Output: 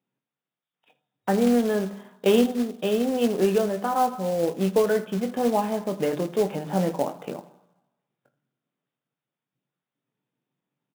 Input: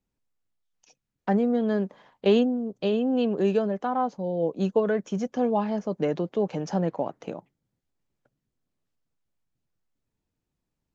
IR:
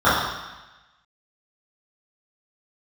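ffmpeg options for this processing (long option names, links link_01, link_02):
-filter_complex "[0:a]bandreject=frequency=50:width_type=h:width=6,bandreject=frequency=100:width_type=h:width=6,bandreject=frequency=150:width_type=h:width=6,bandreject=frequency=200:width_type=h:width=6,bandreject=frequency=250:width_type=h:width=6,bandreject=frequency=300:width_type=h:width=6,bandreject=frequency=350:width_type=h:width=6,aecho=1:1:21|80:0.398|0.133,asplit=2[link_01][link_02];[1:a]atrim=start_sample=2205,highshelf=frequency=2200:gain=6.5[link_03];[link_02][link_03]afir=irnorm=-1:irlink=0,volume=-39.5dB[link_04];[link_01][link_04]amix=inputs=2:normalize=0,afftfilt=real='re*between(b*sr/4096,110,3800)':imag='im*between(b*sr/4096,110,3800)':win_size=4096:overlap=0.75,acrusher=bits=4:mode=log:mix=0:aa=0.000001,volume=1.5dB"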